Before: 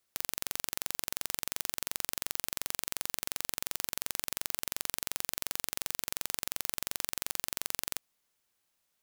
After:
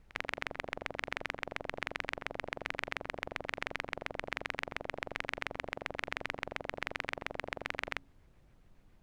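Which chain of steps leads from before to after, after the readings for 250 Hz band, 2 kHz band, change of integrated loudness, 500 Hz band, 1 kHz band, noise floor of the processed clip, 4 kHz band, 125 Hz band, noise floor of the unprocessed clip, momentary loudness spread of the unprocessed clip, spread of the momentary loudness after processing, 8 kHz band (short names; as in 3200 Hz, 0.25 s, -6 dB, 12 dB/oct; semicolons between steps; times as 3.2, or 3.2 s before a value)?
+3.5 dB, +6.0 dB, -5.0 dB, +7.0 dB, +4.0 dB, -63 dBFS, -6.5 dB, +3.5 dB, -79 dBFS, 0 LU, 2 LU, -23.0 dB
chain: de-hum 54.95 Hz, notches 5; LFO low-pass square 7.2 Hz 620–2100 Hz; added noise brown -63 dBFS; pre-echo 52 ms -18.5 dB; gain +3 dB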